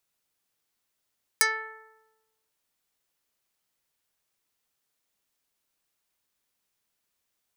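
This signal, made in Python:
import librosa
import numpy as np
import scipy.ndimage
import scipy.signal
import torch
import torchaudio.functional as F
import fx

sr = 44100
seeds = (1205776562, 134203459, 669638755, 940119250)

y = fx.pluck(sr, length_s=1.1, note=69, decay_s=1.13, pick=0.12, brightness='dark')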